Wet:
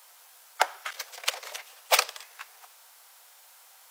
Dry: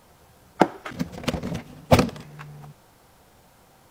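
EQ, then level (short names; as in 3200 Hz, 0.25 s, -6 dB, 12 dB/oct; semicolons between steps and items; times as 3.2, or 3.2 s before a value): Bessel high-pass 910 Hz, order 8; tilt +2.5 dB/oct; 0.0 dB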